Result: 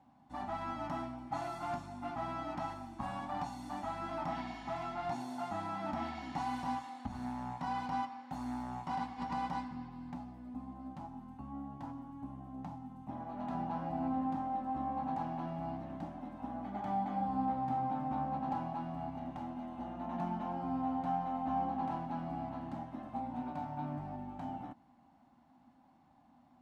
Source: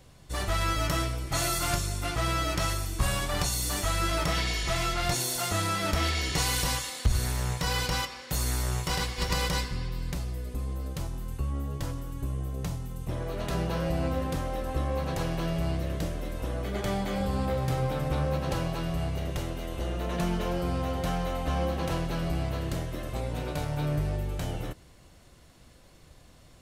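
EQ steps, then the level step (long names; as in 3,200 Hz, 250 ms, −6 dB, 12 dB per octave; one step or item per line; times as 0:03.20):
pair of resonant band-passes 450 Hz, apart 1.7 octaves
low-shelf EQ 320 Hz −3 dB
+5.5 dB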